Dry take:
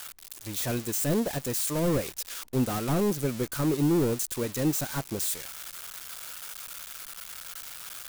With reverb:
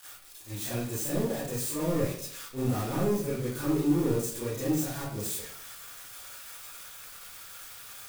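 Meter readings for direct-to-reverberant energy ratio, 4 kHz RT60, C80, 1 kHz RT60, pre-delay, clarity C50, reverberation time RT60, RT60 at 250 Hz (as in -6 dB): -11.0 dB, 0.40 s, 5.5 dB, 0.55 s, 29 ms, 0.0 dB, 0.60 s, 0.65 s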